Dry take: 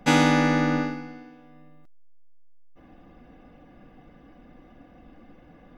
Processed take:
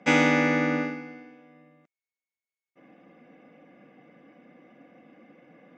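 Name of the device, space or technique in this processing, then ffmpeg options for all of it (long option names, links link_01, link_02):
television speaker: -af "highpass=frequency=160:width=0.5412,highpass=frequency=160:width=1.3066,equalizer=frequency=530:width_type=q:width=4:gain=5,equalizer=frequency=870:width_type=q:width=4:gain=-3,equalizer=frequency=2200:width_type=q:width=4:gain=9,equalizer=frequency=4200:width_type=q:width=4:gain=-8,lowpass=frequency=7000:width=0.5412,lowpass=frequency=7000:width=1.3066,volume=-2.5dB"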